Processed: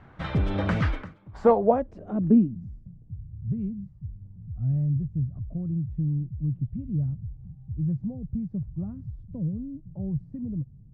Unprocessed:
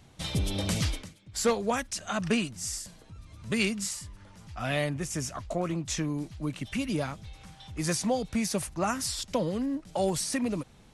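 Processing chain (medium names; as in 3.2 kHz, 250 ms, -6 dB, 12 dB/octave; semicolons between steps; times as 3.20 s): low-pass sweep 1.5 kHz -> 130 Hz, 1.02–2.95 s; trim +4.5 dB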